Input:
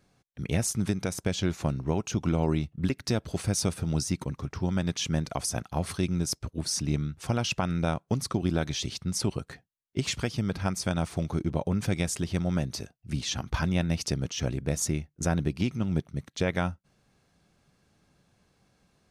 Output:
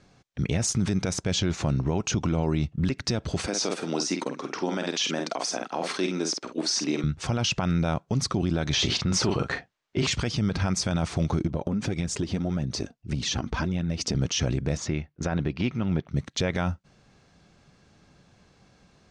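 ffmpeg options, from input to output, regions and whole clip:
ffmpeg -i in.wav -filter_complex "[0:a]asettb=1/sr,asplit=3[link_01][link_02][link_03];[link_01]atrim=end=3.464[link_04];[link_02]atrim=start=3.46:end=7.04,asetpts=PTS-STARTPTS,afade=type=in:duration=0.004:curve=qsin,afade=type=out:start_time=3.576:duration=0.004:curve=qsin,acrossover=split=5600[link_05][link_06];[link_06]acompressor=threshold=-42dB:ratio=4:attack=1:release=60[link_07];[link_05][link_07]amix=inputs=2:normalize=0,highpass=frequency=270:width=0.5412,highpass=frequency=270:width=1.3066,asplit=2[link_08][link_09];[link_09]adelay=49,volume=-7.5dB[link_10];[link_08][link_10]amix=inputs=2:normalize=0,atrim=end_sample=157878[link_11];[link_03]atrim=start=7.036[link_12];[link_04][link_11]acrossfade=duration=0.004:curve1=hsin:curve2=qsin[link_13];[link_13][link_12]acrossfade=duration=0.004:curve1=qsin:curve2=hsin,asettb=1/sr,asplit=3[link_14][link_15][link_16];[link_14]atrim=end=8.734[link_17];[link_15]atrim=start=8.73:end=10.07,asetpts=PTS-STARTPTS,afade=type=in:duration=0.004:curve=qsin,afade=type=out:start_time=1.336:duration=0.004:curve=qsin,asplit=2[link_18][link_19];[link_19]adelay=42,volume=-10dB[link_20];[link_18][link_20]amix=inputs=2:normalize=0,atrim=end_sample=59094,acontrast=85,asplit=2[link_21][link_22];[link_22]highpass=frequency=720:poles=1,volume=10dB,asoftclip=type=tanh:threshold=-8dB[link_23];[link_21][link_23]amix=inputs=2:normalize=0,lowpass=frequency=1800:poles=1,volume=-6dB[link_24];[link_16]atrim=start=10.066[link_25];[link_17][link_24]acrossfade=duration=0.004:curve1=hsin:curve2=qsin[link_26];[link_26][link_25]acrossfade=duration=0.004:curve1=qsin:curve2=hsin,asettb=1/sr,asplit=3[link_27][link_28][link_29];[link_27]atrim=end=11.474[link_30];[link_28]atrim=start=11.47:end=14.15,asetpts=PTS-STARTPTS,afade=type=in:duration=0.004:curve=qsin,afade=type=out:start_time=2.676:duration=0.004:curve=qsin,equalizer=frequency=260:width=0.62:gain=7,flanger=delay=0.5:depth=4.1:regen=35:speed=1.7:shape=triangular,acompressor=threshold=-31dB:ratio=16:attack=3.2:release=140:knee=1:detection=peak[link_31];[link_29]atrim=start=14.146[link_32];[link_30][link_31]acrossfade=duration=0.004:curve1=hsin:curve2=qsin[link_33];[link_33][link_32]acrossfade=duration=0.004:curve1=qsin:curve2=hsin,asettb=1/sr,asplit=3[link_34][link_35][link_36];[link_34]atrim=end=14.774[link_37];[link_35]atrim=start=14.77:end=16.11,asetpts=PTS-STARTPTS,afade=type=in:duration=0.004:curve=qsin,afade=type=out:start_time=1.336:duration=0.004:curve=qsin,lowpass=3200,lowshelf=frequency=360:gain=-6.5[link_38];[link_36]atrim=start=16.106[link_39];[link_37][link_38]acrossfade=duration=0.004:curve1=hsin:curve2=qsin[link_40];[link_40][link_39]acrossfade=duration=0.004:curve1=qsin:curve2=hsin,lowpass=frequency=7400:width=0.5412,lowpass=frequency=7400:width=1.3066,alimiter=level_in=1dB:limit=-24dB:level=0:latency=1:release=39,volume=-1dB,volume=8.5dB" out.wav

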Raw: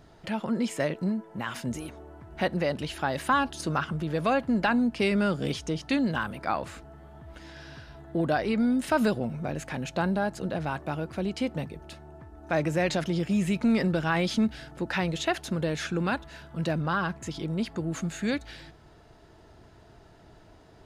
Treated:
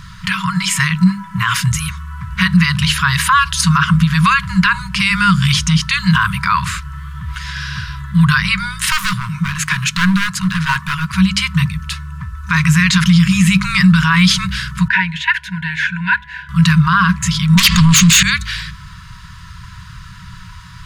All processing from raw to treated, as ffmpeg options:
ffmpeg -i in.wav -filter_complex "[0:a]asettb=1/sr,asplit=3[link_01][link_02][link_03];[link_01]atrim=end=8.864[link_04];[link_02]atrim=start=8.86:end=11.14,asetpts=PTS-STARTPTS,afade=type=in:duration=0.004:curve=qsin,afade=type=out:start_time=2.276:duration=0.004:curve=qsin,highpass=frequency=210:poles=1,volume=29.5dB,asoftclip=hard,volume=-29.5dB[link_05];[link_03]atrim=start=11.136[link_06];[link_04][link_05]acrossfade=duration=0.004:curve1=hsin:curve2=qsin[link_07];[link_07][link_06]acrossfade=duration=0.004:curve1=qsin:curve2=hsin,asettb=1/sr,asplit=3[link_08][link_09][link_10];[link_08]atrim=end=14.884[link_11];[link_09]atrim=start=14.88:end=16.49,asetpts=PTS-STARTPTS,afade=type=in:duration=0.004:curve=qsin,afade=type=out:start_time=1.606:duration=0.004:curve=qsin,asuperstop=centerf=1200:order=8:qfactor=2.5,acrossover=split=410 2400:gain=0.158 1 0.0708[link_12][link_13][link_14];[link_12][link_13][link_14]amix=inputs=3:normalize=0[link_15];[link_10]atrim=start=16.486[link_16];[link_11][link_15]acrossfade=duration=0.004:curve1=hsin:curve2=qsin[link_17];[link_17][link_16]acrossfade=duration=0.004:curve1=qsin:curve2=hsin,asettb=1/sr,asplit=3[link_18][link_19][link_20];[link_18]atrim=end=17.574[link_21];[link_19]atrim=start=17.57:end=18.23,asetpts=PTS-STARTPTS,afade=type=in:duration=0.004:curve=qsin,afade=type=out:start_time=0.656:duration=0.004:curve=qsin,lowpass=frequency=7400:width=0.5412,lowpass=frequency=7400:width=1.3066,highshelf=frequency=2000:width_type=q:width=1.5:gain=10,aeval=exprs='0.188*sin(PI/2*3.98*val(0)/0.188)':channel_layout=same[link_22];[link_20]atrim=start=18.226[link_23];[link_21][link_22]acrossfade=duration=0.004:curve1=hsin:curve2=qsin[link_24];[link_24][link_23]acrossfade=duration=0.004:curve1=qsin:curve2=hsin,bandreject=frequency=50:width_type=h:width=6,bandreject=frequency=100:width_type=h:width=6,bandreject=frequency=150:width_type=h:width=6,bandreject=frequency=200:width_type=h:width=6,afftfilt=real='re*(1-between(b*sr/4096,200,940))':imag='im*(1-between(b*sr/4096,200,940))':win_size=4096:overlap=0.75,alimiter=level_in=24.5dB:limit=-1dB:release=50:level=0:latency=1,volume=-2dB" out.wav

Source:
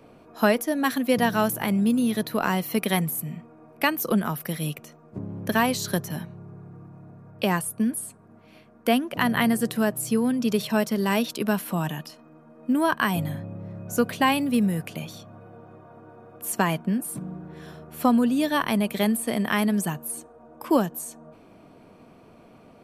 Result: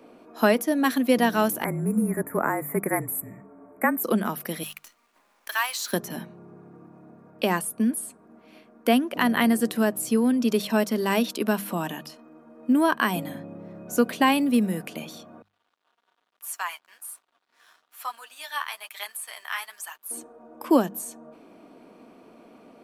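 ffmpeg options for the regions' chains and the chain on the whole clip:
ffmpeg -i in.wav -filter_complex "[0:a]asettb=1/sr,asplit=3[link_01][link_02][link_03];[link_01]atrim=end=1.644[link_04];[link_02]atrim=start=1.64:end=4.04,asetpts=PTS-STARTPTS,afade=type=in:duration=0.004:curve=qsin,afade=type=out:start_time=2.396:duration=0.004:curve=qsin,asuperstop=centerf=4100:order=12:qfactor=0.81,afreqshift=-37[link_05];[link_03]atrim=start=4.036[link_06];[link_04][link_05]acrossfade=duration=0.004:curve1=hsin:curve2=qsin[link_07];[link_07][link_06]acrossfade=duration=0.004:curve1=qsin:curve2=hsin,asettb=1/sr,asplit=3[link_08][link_09][link_10];[link_08]atrim=end=4.634[link_11];[link_09]atrim=start=4.63:end=5.93,asetpts=PTS-STARTPTS,afade=type=in:duration=0.004:curve=qsin,afade=type=out:start_time=1.296:duration=0.004:curve=qsin,highpass=frequency=1000:width=0.5412,highpass=frequency=1000:width=1.3066,acrusher=bits=8:dc=4:mix=0:aa=0.000001[link_12];[link_10]atrim=start=5.926[link_13];[link_11][link_12]acrossfade=duration=0.004:curve1=hsin:curve2=qsin[link_14];[link_14][link_13]acrossfade=duration=0.004:curve1=qsin:curve2=hsin,asettb=1/sr,asplit=3[link_15][link_16][link_17];[link_15]atrim=end=15.424[link_18];[link_16]atrim=start=15.42:end=20.11,asetpts=PTS-STARTPTS,afade=type=in:duration=0.004:curve=qsin,afade=type=out:start_time=4.686:duration=0.004:curve=qsin,highpass=frequency=990:width=0.5412,highpass=frequency=990:width=1.3066,flanger=delay=4.3:depth=9.9:regen=26:speed=1.1:shape=triangular,aeval=exprs='sgn(val(0))*max(abs(val(0))-0.00106,0)':channel_layout=same[link_19];[link_17]atrim=start=20.106[link_20];[link_18][link_19]acrossfade=duration=0.004:curve1=hsin:curve2=qsin[link_21];[link_21][link_20]acrossfade=duration=0.004:curve1=qsin:curve2=hsin,lowshelf=frequency=170:width_type=q:width=1.5:gain=-11,bandreject=frequency=50:width_type=h:width=6,bandreject=frequency=100:width_type=h:width=6,bandreject=frequency=150:width_type=h:width=6,bandreject=frequency=200:width_type=h:width=6" out.wav

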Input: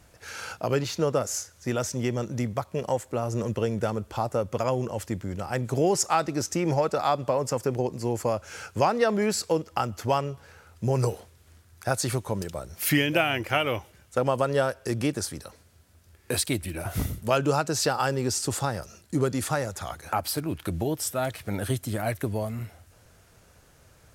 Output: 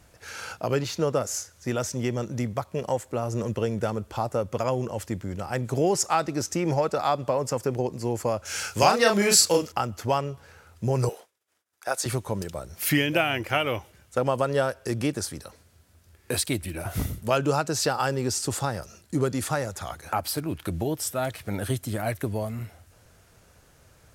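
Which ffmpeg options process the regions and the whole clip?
ffmpeg -i in.wav -filter_complex "[0:a]asettb=1/sr,asplit=3[link_01][link_02][link_03];[link_01]atrim=end=8.454[link_04];[link_02]atrim=start=8.45:end=9.72,asetpts=PTS-STARTPTS,afade=type=in:duration=0.004:curve=qsin,afade=type=out:start_time=1.266:duration=0.004:curve=qsin,highshelf=frequency=2100:gain=12,asplit=2[link_05][link_06];[link_06]adelay=35,volume=-3dB[link_07];[link_05][link_07]amix=inputs=2:normalize=0,atrim=end_sample=56007[link_08];[link_03]atrim=start=9.716[link_09];[link_04][link_08]acrossfade=duration=0.004:curve1=hsin:curve2=qsin[link_10];[link_10][link_09]acrossfade=duration=0.004:curve1=qsin:curve2=hsin,asettb=1/sr,asplit=3[link_11][link_12][link_13];[link_11]atrim=end=11.094[link_14];[link_12]atrim=start=11.09:end=12.06,asetpts=PTS-STARTPTS,afade=type=in:duration=0.004:curve=qsin,afade=type=out:start_time=0.966:duration=0.004:curve=qsin,bandreject=frequency=4300:width=16,agate=range=-33dB:threshold=-46dB:ratio=3:release=100:detection=peak,highpass=460[link_15];[link_13]atrim=start=12.056[link_16];[link_14][link_15]acrossfade=duration=0.004:curve1=hsin:curve2=qsin[link_17];[link_17][link_16]acrossfade=duration=0.004:curve1=qsin:curve2=hsin" out.wav

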